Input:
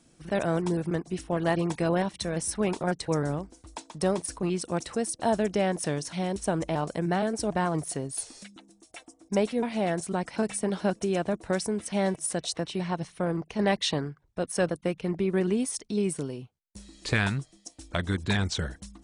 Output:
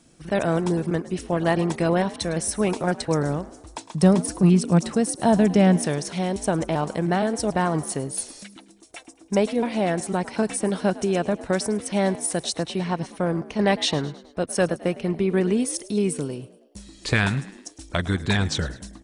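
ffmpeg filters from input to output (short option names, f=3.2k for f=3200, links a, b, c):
-filter_complex "[0:a]asettb=1/sr,asplit=3[a][b][c];[a]atrim=end=3.944[d];[b]atrim=start=3.94:end=5.82,asetpts=PTS-STARTPTS,afade=t=in:d=0.004:c=qsin,afade=t=out:st=1.876:d=0.004:c=qsin,equalizer=f=170:t=o:w=0.77:g=11.5[e];[c]atrim=start=5.816[f];[d][e]acrossfade=d=0.004:c1=hsin:c2=qsin[g];[g][f]acrossfade=d=0.004:c1=qsin:c2=hsin,asplit=5[h][i][j][k][l];[i]adelay=106,afreqshift=54,volume=-18dB[m];[j]adelay=212,afreqshift=108,volume=-24.2dB[n];[k]adelay=318,afreqshift=162,volume=-30.4dB[o];[l]adelay=424,afreqshift=216,volume=-36.6dB[p];[h][m][n][o][p]amix=inputs=5:normalize=0,volume=4.5dB"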